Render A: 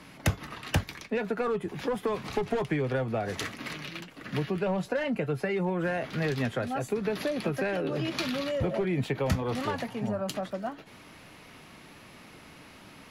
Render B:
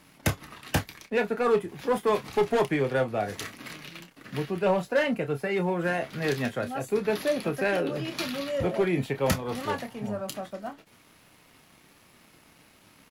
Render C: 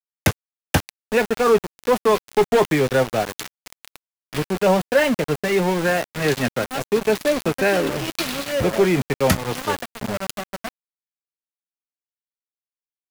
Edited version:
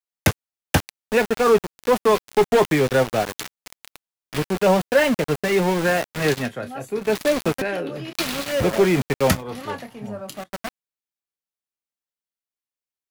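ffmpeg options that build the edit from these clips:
-filter_complex "[1:a]asplit=3[a][b][c];[2:a]asplit=4[d][e][f][g];[d]atrim=end=6.53[h];[a]atrim=start=6.29:end=7.19[i];[e]atrim=start=6.95:end=7.622[j];[b]atrim=start=7.618:end=8.132[k];[f]atrim=start=8.128:end=9.44[l];[c]atrim=start=9.28:end=10.5[m];[g]atrim=start=10.34[n];[h][i]acrossfade=d=0.24:c1=tri:c2=tri[o];[o][j]acrossfade=d=0.24:c1=tri:c2=tri[p];[p][k]acrossfade=d=0.004:c1=hsin:c2=hsin[q];[q][l]acrossfade=d=0.004:c1=hsin:c2=hsin[r];[r][m]acrossfade=d=0.16:c1=tri:c2=tri[s];[s][n]acrossfade=d=0.16:c1=tri:c2=tri"

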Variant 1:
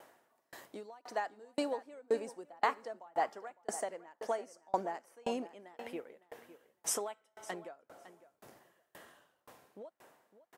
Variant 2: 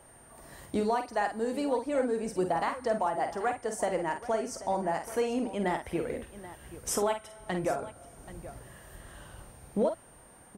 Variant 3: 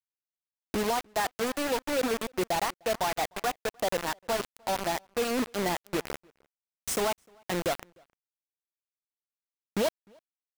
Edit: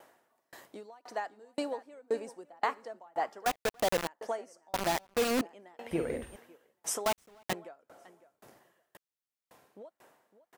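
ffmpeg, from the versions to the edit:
-filter_complex "[2:a]asplit=4[a][b][c][d];[0:a]asplit=6[e][f][g][h][i][j];[e]atrim=end=3.462[k];[a]atrim=start=3.458:end=4.072[l];[f]atrim=start=4.068:end=4.742[m];[b]atrim=start=4.738:end=5.412[n];[g]atrim=start=5.408:end=5.912[o];[1:a]atrim=start=5.908:end=6.362[p];[h]atrim=start=6.358:end=7.062[q];[c]atrim=start=7.058:end=7.532[r];[i]atrim=start=7.528:end=8.972[s];[d]atrim=start=8.968:end=9.512[t];[j]atrim=start=9.508[u];[k][l]acrossfade=d=0.004:c1=hsin:c2=hsin[v];[v][m]acrossfade=d=0.004:c1=hsin:c2=hsin[w];[w][n]acrossfade=d=0.004:c1=hsin:c2=hsin[x];[x][o]acrossfade=d=0.004:c1=hsin:c2=hsin[y];[y][p]acrossfade=d=0.004:c1=hsin:c2=hsin[z];[z][q]acrossfade=d=0.004:c1=hsin:c2=hsin[aa];[aa][r]acrossfade=d=0.004:c1=hsin:c2=hsin[ab];[ab][s]acrossfade=d=0.004:c1=hsin:c2=hsin[ac];[ac][t]acrossfade=d=0.004:c1=hsin:c2=hsin[ad];[ad][u]acrossfade=d=0.004:c1=hsin:c2=hsin"

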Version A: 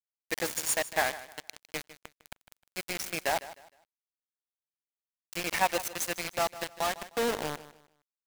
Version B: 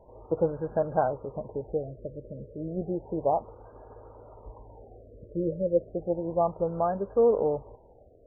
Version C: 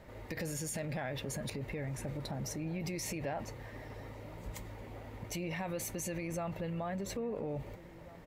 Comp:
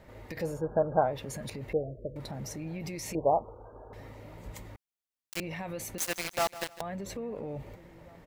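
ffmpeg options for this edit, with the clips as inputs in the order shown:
-filter_complex "[1:a]asplit=3[a][b][c];[0:a]asplit=2[d][e];[2:a]asplit=6[f][g][h][i][j][k];[f]atrim=end=0.62[l];[a]atrim=start=0.38:end=1.24[m];[g]atrim=start=1:end=1.732[n];[b]atrim=start=1.728:end=2.162[o];[h]atrim=start=2.158:end=3.152[p];[c]atrim=start=3.148:end=3.932[q];[i]atrim=start=3.928:end=4.762[r];[d]atrim=start=4.758:end=5.402[s];[j]atrim=start=5.398:end=5.982[t];[e]atrim=start=5.978:end=6.812[u];[k]atrim=start=6.808[v];[l][m]acrossfade=d=0.24:c1=tri:c2=tri[w];[w][n]acrossfade=d=0.24:c1=tri:c2=tri[x];[x][o]acrossfade=d=0.004:c1=hsin:c2=hsin[y];[y][p]acrossfade=d=0.004:c1=hsin:c2=hsin[z];[z][q]acrossfade=d=0.004:c1=hsin:c2=hsin[aa];[aa][r]acrossfade=d=0.004:c1=hsin:c2=hsin[ab];[ab][s]acrossfade=d=0.004:c1=hsin:c2=hsin[ac];[ac][t]acrossfade=d=0.004:c1=hsin:c2=hsin[ad];[ad][u]acrossfade=d=0.004:c1=hsin:c2=hsin[ae];[ae][v]acrossfade=d=0.004:c1=hsin:c2=hsin"

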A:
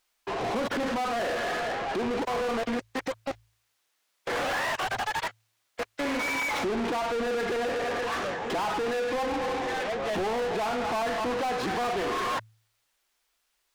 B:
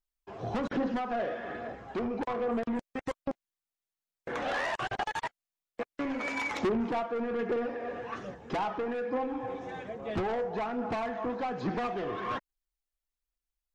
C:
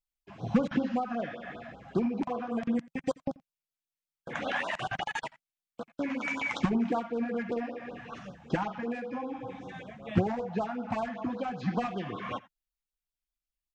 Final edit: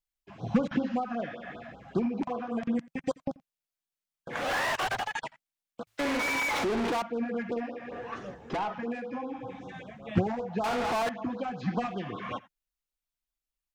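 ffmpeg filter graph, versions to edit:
-filter_complex "[0:a]asplit=3[a][b][c];[2:a]asplit=5[d][e][f][g][h];[d]atrim=end=4.54[i];[a]atrim=start=4.3:end=5.15[j];[e]atrim=start=4.91:end=5.872[k];[b]atrim=start=5.868:end=7.022[l];[f]atrim=start=7.018:end=7.922[m];[1:a]atrim=start=7.918:end=8.742[n];[g]atrim=start=8.738:end=10.642[o];[c]atrim=start=10.638:end=11.092[p];[h]atrim=start=11.088[q];[i][j]acrossfade=d=0.24:c1=tri:c2=tri[r];[r][k]acrossfade=d=0.24:c1=tri:c2=tri[s];[s][l]acrossfade=d=0.004:c1=hsin:c2=hsin[t];[t][m]acrossfade=d=0.004:c1=hsin:c2=hsin[u];[u][n]acrossfade=d=0.004:c1=hsin:c2=hsin[v];[v][o]acrossfade=d=0.004:c1=hsin:c2=hsin[w];[w][p]acrossfade=d=0.004:c1=hsin:c2=hsin[x];[x][q]acrossfade=d=0.004:c1=hsin:c2=hsin"

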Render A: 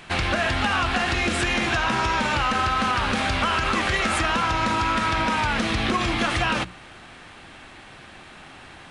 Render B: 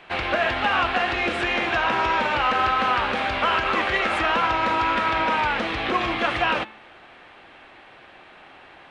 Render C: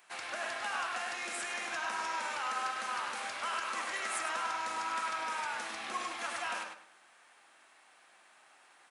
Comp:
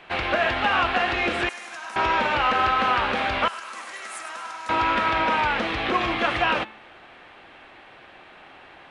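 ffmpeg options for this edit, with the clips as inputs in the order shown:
-filter_complex "[2:a]asplit=2[a][b];[1:a]asplit=3[c][d][e];[c]atrim=end=1.492[f];[a]atrim=start=1.488:end=1.962[g];[d]atrim=start=1.958:end=3.482[h];[b]atrim=start=3.478:end=4.692[i];[e]atrim=start=4.688[j];[f][g]acrossfade=d=0.004:c1=hsin:c2=hsin[k];[k][h]acrossfade=d=0.004:c1=hsin:c2=hsin[l];[l][i]acrossfade=d=0.004:c1=hsin:c2=hsin[m];[m][j]acrossfade=d=0.004:c1=hsin:c2=hsin"

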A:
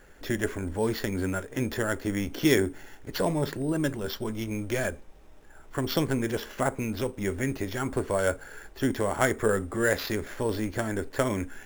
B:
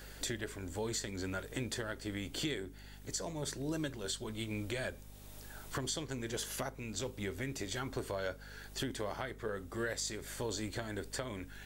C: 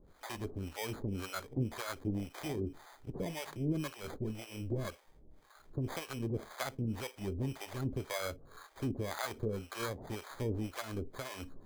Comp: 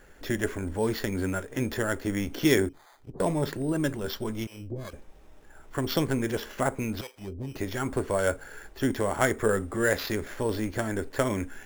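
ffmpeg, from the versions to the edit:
-filter_complex "[2:a]asplit=3[a][b][c];[0:a]asplit=4[d][e][f][g];[d]atrim=end=2.692[h];[a]atrim=start=2.688:end=3.202[i];[e]atrim=start=3.198:end=4.472[j];[b]atrim=start=4.468:end=4.932[k];[f]atrim=start=4.928:end=7.012[l];[c]atrim=start=7.008:end=7.552[m];[g]atrim=start=7.548[n];[h][i]acrossfade=d=0.004:c1=hsin:c2=hsin[o];[o][j]acrossfade=d=0.004:c1=hsin:c2=hsin[p];[p][k]acrossfade=d=0.004:c1=hsin:c2=hsin[q];[q][l]acrossfade=d=0.004:c1=hsin:c2=hsin[r];[r][m]acrossfade=d=0.004:c1=hsin:c2=hsin[s];[s][n]acrossfade=d=0.004:c1=hsin:c2=hsin"

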